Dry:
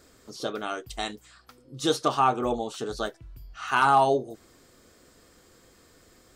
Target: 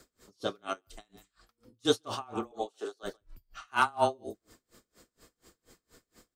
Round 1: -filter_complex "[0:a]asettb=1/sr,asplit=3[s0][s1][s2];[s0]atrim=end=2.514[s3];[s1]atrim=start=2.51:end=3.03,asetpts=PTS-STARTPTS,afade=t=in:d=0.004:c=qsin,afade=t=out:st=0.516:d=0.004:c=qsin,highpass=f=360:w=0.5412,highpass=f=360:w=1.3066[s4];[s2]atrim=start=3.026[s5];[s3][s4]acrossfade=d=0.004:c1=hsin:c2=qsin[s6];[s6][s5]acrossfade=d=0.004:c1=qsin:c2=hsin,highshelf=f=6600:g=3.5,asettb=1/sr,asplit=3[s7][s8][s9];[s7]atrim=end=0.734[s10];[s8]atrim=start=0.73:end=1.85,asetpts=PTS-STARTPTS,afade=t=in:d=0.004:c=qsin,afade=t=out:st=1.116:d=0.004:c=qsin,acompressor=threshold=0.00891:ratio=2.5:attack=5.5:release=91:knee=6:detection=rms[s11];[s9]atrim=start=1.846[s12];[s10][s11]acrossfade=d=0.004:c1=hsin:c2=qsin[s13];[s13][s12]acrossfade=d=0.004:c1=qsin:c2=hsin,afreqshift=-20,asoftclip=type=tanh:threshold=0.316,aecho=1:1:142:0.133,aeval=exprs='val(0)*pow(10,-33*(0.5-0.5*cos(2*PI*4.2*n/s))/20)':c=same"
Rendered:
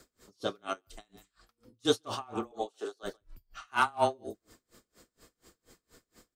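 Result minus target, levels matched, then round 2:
saturation: distortion +13 dB
-filter_complex "[0:a]asettb=1/sr,asplit=3[s0][s1][s2];[s0]atrim=end=2.514[s3];[s1]atrim=start=2.51:end=3.03,asetpts=PTS-STARTPTS,afade=t=in:d=0.004:c=qsin,afade=t=out:st=0.516:d=0.004:c=qsin,highpass=f=360:w=0.5412,highpass=f=360:w=1.3066[s4];[s2]atrim=start=3.026[s5];[s3][s4]acrossfade=d=0.004:c1=hsin:c2=qsin[s6];[s6][s5]acrossfade=d=0.004:c1=qsin:c2=hsin,highshelf=f=6600:g=3.5,asettb=1/sr,asplit=3[s7][s8][s9];[s7]atrim=end=0.734[s10];[s8]atrim=start=0.73:end=1.85,asetpts=PTS-STARTPTS,afade=t=in:d=0.004:c=qsin,afade=t=out:st=1.116:d=0.004:c=qsin,acompressor=threshold=0.00891:ratio=2.5:attack=5.5:release=91:knee=6:detection=rms[s11];[s9]atrim=start=1.846[s12];[s10][s11]acrossfade=d=0.004:c1=hsin:c2=qsin[s13];[s13][s12]acrossfade=d=0.004:c1=qsin:c2=hsin,afreqshift=-20,asoftclip=type=tanh:threshold=0.75,aecho=1:1:142:0.133,aeval=exprs='val(0)*pow(10,-33*(0.5-0.5*cos(2*PI*4.2*n/s))/20)':c=same"

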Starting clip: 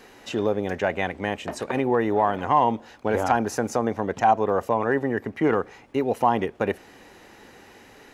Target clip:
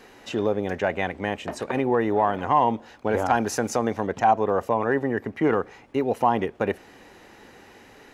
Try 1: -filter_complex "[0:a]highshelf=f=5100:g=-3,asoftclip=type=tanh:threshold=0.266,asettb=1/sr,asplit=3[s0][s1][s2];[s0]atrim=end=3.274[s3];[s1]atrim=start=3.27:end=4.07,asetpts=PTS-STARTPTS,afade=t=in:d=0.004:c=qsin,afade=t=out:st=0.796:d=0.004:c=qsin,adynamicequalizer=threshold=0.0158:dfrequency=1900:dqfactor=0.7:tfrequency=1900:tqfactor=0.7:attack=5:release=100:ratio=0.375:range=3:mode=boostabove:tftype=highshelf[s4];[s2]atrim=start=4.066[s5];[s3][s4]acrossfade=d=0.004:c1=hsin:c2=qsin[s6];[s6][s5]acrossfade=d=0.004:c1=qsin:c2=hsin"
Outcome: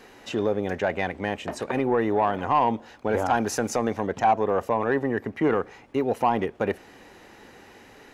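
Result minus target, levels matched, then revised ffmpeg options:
saturation: distortion +16 dB
-filter_complex "[0:a]highshelf=f=5100:g=-3,asoftclip=type=tanh:threshold=0.794,asettb=1/sr,asplit=3[s0][s1][s2];[s0]atrim=end=3.274[s3];[s1]atrim=start=3.27:end=4.07,asetpts=PTS-STARTPTS,afade=t=in:d=0.004:c=qsin,afade=t=out:st=0.796:d=0.004:c=qsin,adynamicequalizer=threshold=0.0158:dfrequency=1900:dqfactor=0.7:tfrequency=1900:tqfactor=0.7:attack=5:release=100:ratio=0.375:range=3:mode=boostabove:tftype=highshelf[s4];[s2]atrim=start=4.066[s5];[s3][s4]acrossfade=d=0.004:c1=hsin:c2=qsin[s6];[s6][s5]acrossfade=d=0.004:c1=qsin:c2=hsin"

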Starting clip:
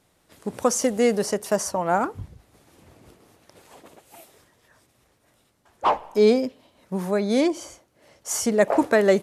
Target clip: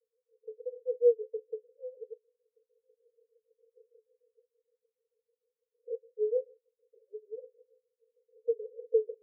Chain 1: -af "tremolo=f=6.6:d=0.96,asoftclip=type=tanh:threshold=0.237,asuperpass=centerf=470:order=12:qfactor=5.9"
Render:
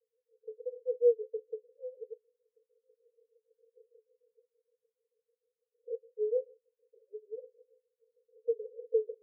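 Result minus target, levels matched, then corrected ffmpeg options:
saturation: distortion +19 dB
-af "tremolo=f=6.6:d=0.96,asoftclip=type=tanh:threshold=0.891,asuperpass=centerf=470:order=12:qfactor=5.9"

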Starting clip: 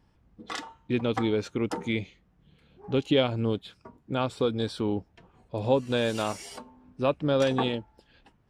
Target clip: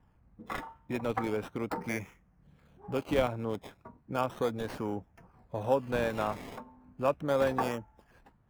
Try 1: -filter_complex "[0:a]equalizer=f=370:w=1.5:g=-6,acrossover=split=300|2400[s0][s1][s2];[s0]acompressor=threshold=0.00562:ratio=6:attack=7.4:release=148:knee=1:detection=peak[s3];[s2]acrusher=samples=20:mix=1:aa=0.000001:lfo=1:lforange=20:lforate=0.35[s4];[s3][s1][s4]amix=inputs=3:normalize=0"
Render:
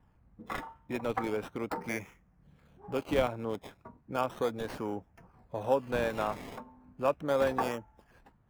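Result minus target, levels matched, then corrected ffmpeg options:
compression: peak gain reduction +5 dB
-filter_complex "[0:a]equalizer=f=370:w=1.5:g=-6,acrossover=split=300|2400[s0][s1][s2];[s0]acompressor=threshold=0.0112:ratio=6:attack=7.4:release=148:knee=1:detection=peak[s3];[s2]acrusher=samples=20:mix=1:aa=0.000001:lfo=1:lforange=20:lforate=0.35[s4];[s3][s1][s4]amix=inputs=3:normalize=0"

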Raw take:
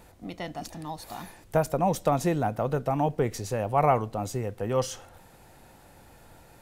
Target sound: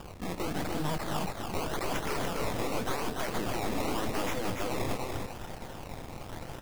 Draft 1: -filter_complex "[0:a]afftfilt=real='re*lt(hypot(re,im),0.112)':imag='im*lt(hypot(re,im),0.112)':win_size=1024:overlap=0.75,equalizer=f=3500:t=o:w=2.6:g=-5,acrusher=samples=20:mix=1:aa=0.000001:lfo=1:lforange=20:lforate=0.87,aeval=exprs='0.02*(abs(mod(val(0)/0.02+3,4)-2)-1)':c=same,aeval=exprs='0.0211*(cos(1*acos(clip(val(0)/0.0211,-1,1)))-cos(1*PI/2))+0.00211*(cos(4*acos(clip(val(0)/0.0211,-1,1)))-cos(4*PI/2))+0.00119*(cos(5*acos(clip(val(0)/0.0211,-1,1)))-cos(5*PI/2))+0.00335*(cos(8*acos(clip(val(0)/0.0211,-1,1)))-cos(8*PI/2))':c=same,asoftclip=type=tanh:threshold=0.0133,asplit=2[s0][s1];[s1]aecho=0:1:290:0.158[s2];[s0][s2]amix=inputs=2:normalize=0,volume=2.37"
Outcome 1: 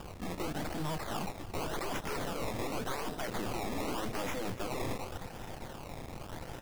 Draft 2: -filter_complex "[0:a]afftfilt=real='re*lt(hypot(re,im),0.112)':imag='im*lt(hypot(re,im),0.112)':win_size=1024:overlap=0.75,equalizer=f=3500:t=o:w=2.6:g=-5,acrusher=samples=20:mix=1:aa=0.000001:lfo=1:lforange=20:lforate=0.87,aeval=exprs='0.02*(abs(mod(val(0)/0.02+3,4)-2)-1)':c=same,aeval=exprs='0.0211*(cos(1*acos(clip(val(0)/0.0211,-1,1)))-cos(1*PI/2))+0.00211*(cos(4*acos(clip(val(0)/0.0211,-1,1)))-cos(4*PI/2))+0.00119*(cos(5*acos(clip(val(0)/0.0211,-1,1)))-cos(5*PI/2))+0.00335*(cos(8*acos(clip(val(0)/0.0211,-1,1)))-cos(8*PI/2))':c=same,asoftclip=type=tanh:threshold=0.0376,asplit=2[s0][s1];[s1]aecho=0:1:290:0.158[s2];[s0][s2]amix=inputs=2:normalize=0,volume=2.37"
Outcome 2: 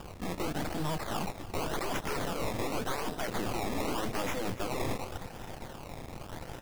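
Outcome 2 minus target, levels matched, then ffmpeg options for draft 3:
echo-to-direct -11.5 dB
-filter_complex "[0:a]afftfilt=real='re*lt(hypot(re,im),0.112)':imag='im*lt(hypot(re,im),0.112)':win_size=1024:overlap=0.75,equalizer=f=3500:t=o:w=2.6:g=-5,acrusher=samples=20:mix=1:aa=0.000001:lfo=1:lforange=20:lforate=0.87,aeval=exprs='0.02*(abs(mod(val(0)/0.02+3,4)-2)-1)':c=same,aeval=exprs='0.0211*(cos(1*acos(clip(val(0)/0.0211,-1,1)))-cos(1*PI/2))+0.00211*(cos(4*acos(clip(val(0)/0.0211,-1,1)))-cos(4*PI/2))+0.00119*(cos(5*acos(clip(val(0)/0.0211,-1,1)))-cos(5*PI/2))+0.00335*(cos(8*acos(clip(val(0)/0.0211,-1,1)))-cos(8*PI/2))':c=same,asoftclip=type=tanh:threshold=0.0376,asplit=2[s0][s1];[s1]aecho=0:1:290:0.596[s2];[s0][s2]amix=inputs=2:normalize=0,volume=2.37"

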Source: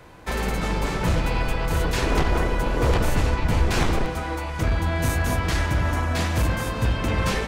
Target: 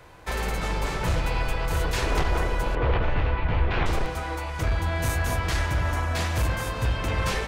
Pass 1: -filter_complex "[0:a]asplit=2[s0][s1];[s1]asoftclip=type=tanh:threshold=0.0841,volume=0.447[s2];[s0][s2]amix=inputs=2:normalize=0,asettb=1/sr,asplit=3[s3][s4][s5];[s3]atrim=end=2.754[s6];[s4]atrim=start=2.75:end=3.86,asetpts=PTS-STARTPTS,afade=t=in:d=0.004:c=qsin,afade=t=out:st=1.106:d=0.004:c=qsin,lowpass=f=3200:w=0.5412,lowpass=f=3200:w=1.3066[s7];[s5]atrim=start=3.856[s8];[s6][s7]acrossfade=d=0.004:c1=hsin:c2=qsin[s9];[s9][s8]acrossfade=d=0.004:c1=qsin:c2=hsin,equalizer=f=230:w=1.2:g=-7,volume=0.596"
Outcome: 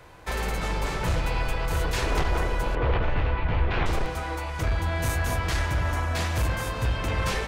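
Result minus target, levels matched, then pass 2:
saturation: distortion +8 dB
-filter_complex "[0:a]asplit=2[s0][s1];[s1]asoftclip=type=tanh:threshold=0.178,volume=0.447[s2];[s0][s2]amix=inputs=2:normalize=0,asettb=1/sr,asplit=3[s3][s4][s5];[s3]atrim=end=2.754[s6];[s4]atrim=start=2.75:end=3.86,asetpts=PTS-STARTPTS,afade=t=in:d=0.004:c=qsin,afade=t=out:st=1.106:d=0.004:c=qsin,lowpass=f=3200:w=0.5412,lowpass=f=3200:w=1.3066[s7];[s5]atrim=start=3.856[s8];[s6][s7]acrossfade=d=0.004:c1=hsin:c2=qsin[s9];[s9][s8]acrossfade=d=0.004:c1=qsin:c2=hsin,equalizer=f=230:w=1.2:g=-7,volume=0.596"

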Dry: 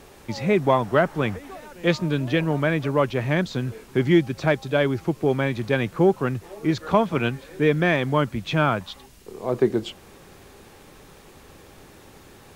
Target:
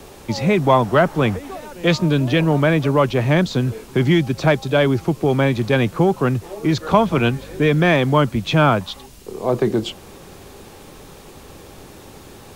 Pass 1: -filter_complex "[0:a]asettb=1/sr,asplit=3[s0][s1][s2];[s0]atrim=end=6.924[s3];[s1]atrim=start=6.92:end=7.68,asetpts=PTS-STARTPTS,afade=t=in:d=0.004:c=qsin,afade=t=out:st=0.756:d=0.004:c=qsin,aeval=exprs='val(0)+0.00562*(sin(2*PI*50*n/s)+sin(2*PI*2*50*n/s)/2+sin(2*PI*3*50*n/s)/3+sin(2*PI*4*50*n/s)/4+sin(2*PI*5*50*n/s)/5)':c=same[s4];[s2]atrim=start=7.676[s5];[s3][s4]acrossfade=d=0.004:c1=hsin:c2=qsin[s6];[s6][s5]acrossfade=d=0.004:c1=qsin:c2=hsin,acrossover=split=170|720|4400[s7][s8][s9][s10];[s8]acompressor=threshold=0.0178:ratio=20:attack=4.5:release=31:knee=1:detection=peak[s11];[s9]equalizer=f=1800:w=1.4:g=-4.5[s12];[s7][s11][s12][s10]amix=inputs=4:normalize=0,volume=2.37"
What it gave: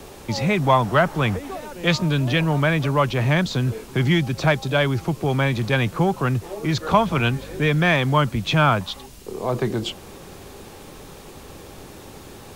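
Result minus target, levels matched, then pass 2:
compression: peak gain reduction +10.5 dB
-filter_complex "[0:a]asettb=1/sr,asplit=3[s0][s1][s2];[s0]atrim=end=6.924[s3];[s1]atrim=start=6.92:end=7.68,asetpts=PTS-STARTPTS,afade=t=in:d=0.004:c=qsin,afade=t=out:st=0.756:d=0.004:c=qsin,aeval=exprs='val(0)+0.00562*(sin(2*PI*50*n/s)+sin(2*PI*2*50*n/s)/2+sin(2*PI*3*50*n/s)/3+sin(2*PI*4*50*n/s)/4+sin(2*PI*5*50*n/s)/5)':c=same[s4];[s2]atrim=start=7.676[s5];[s3][s4]acrossfade=d=0.004:c1=hsin:c2=qsin[s6];[s6][s5]acrossfade=d=0.004:c1=qsin:c2=hsin,acrossover=split=170|720|4400[s7][s8][s9][s10];[s8]acompressor=threshold=0.0631:ratio=20:attack=4.5:release=31:knee=1:detection=peak[s11];[s9]equalizer=f=1800:w=1.4:g=-4.5[s12];[s7][s11][s12][s10]amix=inputs=4:normalize=0,volume=2.37"

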